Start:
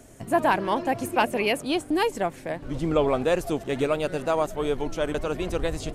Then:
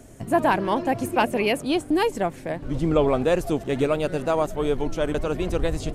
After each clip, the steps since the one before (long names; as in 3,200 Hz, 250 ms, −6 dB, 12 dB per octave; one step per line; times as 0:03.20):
low-shelf EQ 410 Hz +5 dB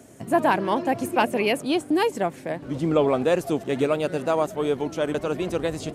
high-pass filter 140 Hz 12 dB per octave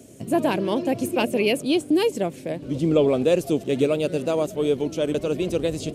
flat-topped bell 1,200 Hz −10 dB
level +2.5 dB